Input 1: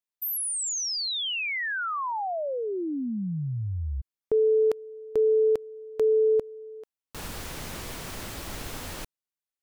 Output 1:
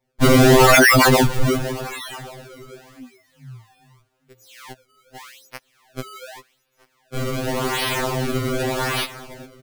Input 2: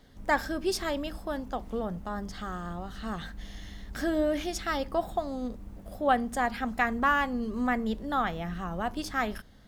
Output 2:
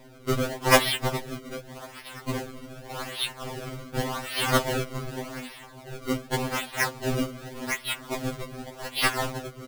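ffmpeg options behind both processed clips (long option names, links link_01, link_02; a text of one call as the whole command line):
ffmpeg -i in.wav -af "aecho=1:1:411|822|1233|1644:0.158|0.065|0.0266|0.0109,aexciter=amount=14.4:drive=10:freq=2100,acrusher=samples=29:mix=1:aa=0.000001:lfo=1:lforange=46.4:lforate=0.86,afftfilt=real='re*2.45*eq(mod(b,6),0)':imag='im*2.45*eq(mod(b,6),0)':win_size=2048:overlap=0.75,volume=-11.5dB" out.wav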